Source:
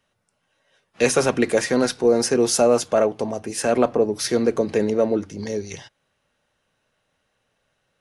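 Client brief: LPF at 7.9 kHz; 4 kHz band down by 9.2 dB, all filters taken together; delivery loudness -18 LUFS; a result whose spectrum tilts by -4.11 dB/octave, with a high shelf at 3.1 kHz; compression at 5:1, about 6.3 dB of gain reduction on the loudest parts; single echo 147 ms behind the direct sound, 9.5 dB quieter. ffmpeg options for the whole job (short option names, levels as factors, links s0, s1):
-af "lowpass=7900,highshelf=f=3100:g=-8.5,equalizer=f=4000:t=o:g=-4,acompressor=threshold=0.1:ratio=5,aecho=1:1:147:0.335,volume=2.51"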